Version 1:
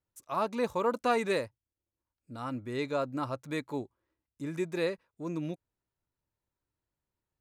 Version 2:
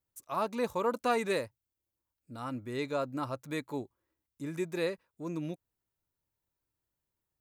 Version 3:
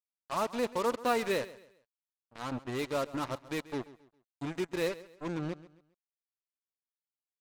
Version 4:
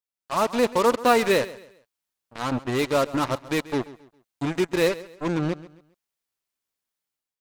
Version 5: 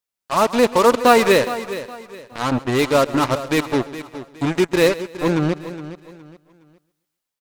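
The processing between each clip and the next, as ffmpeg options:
ffmpeg -i in.wav -af "highshelf=frequency=12000:gain=11.5,volume=-1.5dB" out.wav
ffmpeg -i in.wav -af "lowpass=5800,acrusher=bits=5:mix=0:aa=0.5,aecho=1:1:135|270|405:0.126|0.0428|0.0146" out.wav
ffmpeg -i in.wav -af "dynaudnorm=framelen=130:gausssize=5:maxgain=10.5dB" out.wav
ffmpeg -i in.wav -af "aecho=1:1:415|830|1245:0.211|0.0655|0.0203,volume=6dB" out.wav

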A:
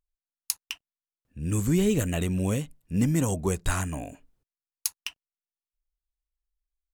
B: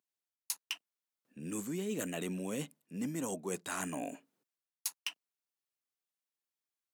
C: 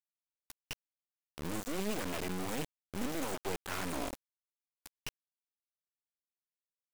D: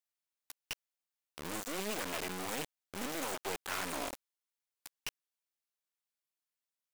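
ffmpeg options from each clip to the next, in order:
ffmpeg -i in.wav -af "highpass=frequency=200:width=0.5412,highpass=frequency=200:width=1.3066,areverse,acompressor=threshold=-36dB:ratio=6,areverse,volume=1dB" out.wav
ffmpeg -i in.wav -filter_complex "[0:a]acrossover=split=2700[link_01][link_02];[link_02]acompressor=threshold=-52dB:ratio=4:attack=1:release=60[link_03];[link_01][link_03]amix=inputs=2:normalize=0,acrusher=bits=4:dc=4:mix=0:aa=0.000001,volume=4.5dB" out.wav
ffmpeg -i in.wav -af "lowshelf=frequency=350:gain=-11.5,volume=2.5dB" out.wav

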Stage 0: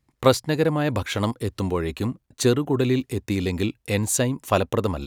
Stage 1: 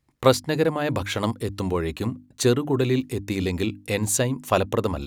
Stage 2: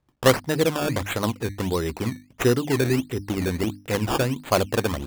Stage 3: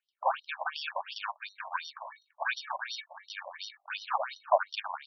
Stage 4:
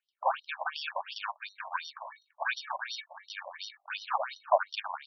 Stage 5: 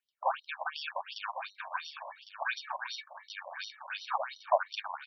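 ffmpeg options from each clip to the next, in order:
ffmpeg -i in.wav -af "bandreject=frequency=50:width_type=h:width=6,bandreject=frequency=100:width_type=h:width=6,bandreject=frequency=150:width_type=h:width=6,bandreject=frequency=200:width_type=h:width=6,bandreject=frequency=250:width_type=h:width=6,bandreject=frequency=300:width_type=h:width=6" out.wav
ffmpeg -i in.wav -af "acrusher=samples=15:mix=1:aa=0.000001:lfo=1:lforange=15:lforate=1.5" out.wav
ffmpeg -i in.wav -af "acrusher=samples=22:mix=1:aa=0.000001,highpass=490,afftfilt=real='re*between(b*sr/1024,770*pow(4200/770,0.5+0.5*sin(2*PI*2.8*pts/sr))/1.41,770*pow(4200/770,0.5+0.5*sin(2*PI*2.8*pts/sr))*1.41)':imag='im*between(b*sr/1024,770*pow(4200/770,0.5+0.5*sin(2*PI*2.8*pts/sr))/1.41,770*pow(4200/770,0.5+0.5*sin(2*PI*2.8*pts/sr))*1.41)':win_size=1024:overlap=0.75" out.wav
ffmpeg -i in.wav -af anull out.wav
ffmpeg -i in.wav -af "aecho=1:1:1105:0.299,volume=-2dB" out.wav

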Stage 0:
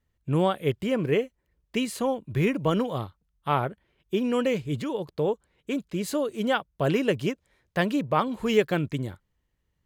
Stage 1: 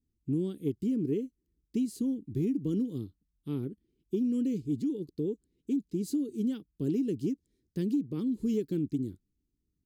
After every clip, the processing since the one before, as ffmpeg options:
ffmpeg -i in.wav -af "firequalizer=gain_entry='entry(140,0);entry(280,11);entry(430,-1);entry(620,-29);entry(4700,-2)':delay=0.05:min_phase=1,acompressor=threshold=-20dB:ratio=5,volume=-6dB" out.wav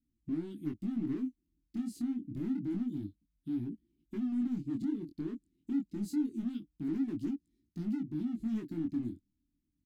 ffmpeg -i in.wav -af "volume=33.5dB,asoftclip=hard,volume=-33.5dB,flanger=delay=17.5:depth=7.9:speed=0.27,firequalizer=gain_entry='entry(130,0);entry(300,8);entry(470,-19);entry(2100,-1);entry(6600,-4)':delay=0.05:min_phase=1" out.wav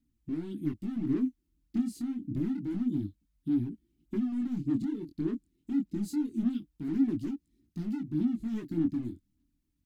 ffmpeg -i in.wav -af "aphaser=in_gain=1:out_gain=1:delay=2.3:decay=0.39:speed=1.7:type=sinusoidal,volume=3dB" out.wav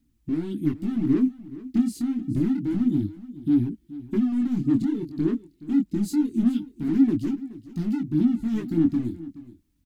ffmpeg -i in.wav -af "aecho=1:1:424:0.141,volume=8dB" out.wav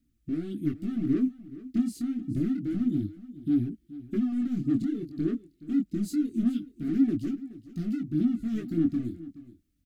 ffmpeg -i in.wav -af "asuperstop=centerf=930:order=12:qfactor=2.6,volume=-4.5dB" out.wav

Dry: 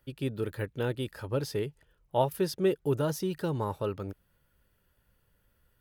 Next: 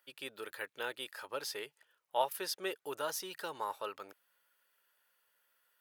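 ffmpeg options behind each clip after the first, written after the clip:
ffmpeg -i in.wav -af "highpass=910,volume=1dB" out.wav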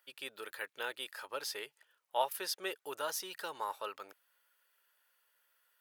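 ffmpeg -i in.wav -af "lowshelf=frequency=330:gain=-9,volume=1dB" out.wav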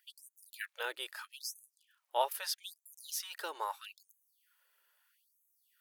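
ffmpeg -i in.wav -af "afftfilt=real='re*gte(b*sr/1024,280*pow(6200/280,0.5+0.5*sin(2*PI*0.78*pts/sr)))':imag='im*gte(b*sr/1024,280*pow(6200/280,0.5+0.5*sin(2*PI*0.78*pts/sr)))':win_size=1024:overlap=0.75,volume=1dB" out.wav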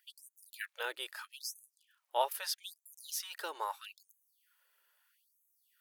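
ffmpeg -i in.wav -af anull out.wav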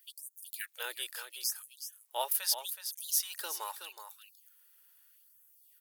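ffmpeg -i in.wav -af "crystalizer=i=4:c=0,aecho=1:1:372:0.316,volume=-5dB" out.wav

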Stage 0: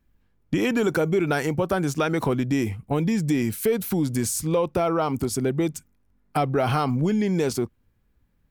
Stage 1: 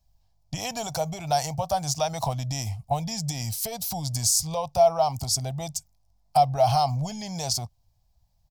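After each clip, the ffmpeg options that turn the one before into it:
ffmpeg -i in.wav -af "firequalizer=gain_entry='entry(130,0);entry(190,-12);entry(360,-28);entry(680,9);entry(1400,-16);entry(4900,12);entry(9200,2)':delay=0.05:min_phase=1" out.wav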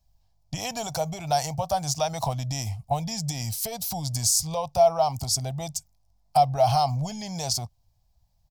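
ffmpeg -i in.wav -af anull out.wav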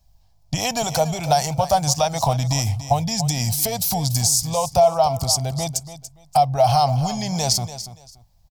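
ffmpeg -i in.wav -af "alimiter=limit=-15.5dB:level=0:latency=1:release=387,aecho=1:1:287|574:0.224|0.047,volume=8.5dB" out.wav

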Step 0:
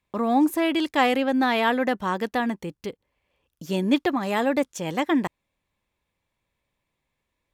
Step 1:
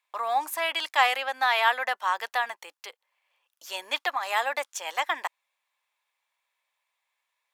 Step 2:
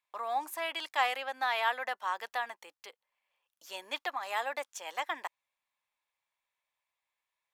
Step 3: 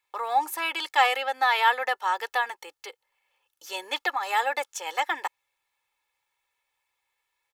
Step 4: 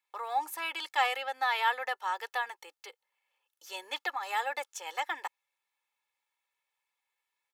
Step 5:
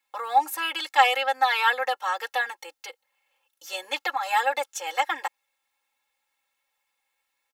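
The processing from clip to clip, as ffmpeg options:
ffmpeg -i in.wav -af "highpass=frequency=770:width=0.5412,highpass=frequency=770:width=1.3066,volume=2dB" out.wav
ffmpeg -i in.wav -af "lowshelf=frequency=310:gain=12,volume=-8.5dB" out.wav
ffmpeg -i in.wav -af "aecho=1:1:2.3:0.72,volume=6.5dB" out.wav
ffmpeg -i in.wav -af "lowshelf=frequency=210:gain=-10.5,volume=-6.5dB" out.wav
ffmpeg -i in.wav -af "aecho=1:1:3.7:0.9,volume=5.5dB" out.wav

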